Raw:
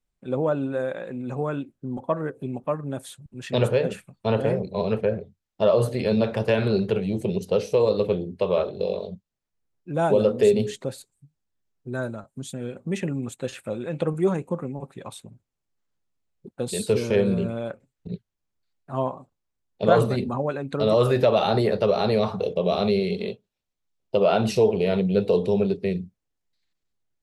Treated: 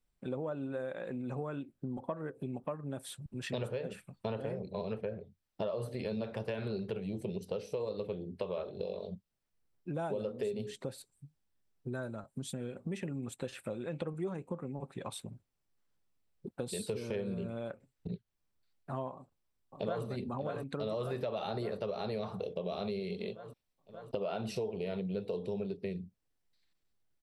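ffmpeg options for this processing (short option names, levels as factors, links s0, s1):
-filter_complex "[0:a]asettb=1/sr,asplit=3[s0][s1][s2];[s0]atrim=end=13.844[s3];[s1]atrim=start=13.84:end=15.13,asetpts=PTS-STARTPTS,afade=t=in:d=0.004:c=qsin,afade=t=out:st=1.286:d=0.004:c=qsin,lowpass=9200[s4];[s2]atrim=start=15.126[s5];[s3][s4]acrossfade=d=0.004:c1=hsin:c2=qsin[s6];[s6][s5]acrossfade=d=0.004:c1=qsin:c2=hsin,asplit=2[s7][s8];[s8]afade=t=in:st=19.14:d=0.01,afade=t=out:st=20.05:d=0.01,aecho=0:1:580|1160|1740|2320|2900|3480|4060|4640|5220:0.334965|0.217728|0.141523|0.0919899|0.0597934|0.0388657|0.0252627|0.0164208|0.0106735[s9];[s7][s9]amix=inputs=2:normalize=0,bandreject=f=6700:w=9,acompressor=threshold=0.0141:ratio=4"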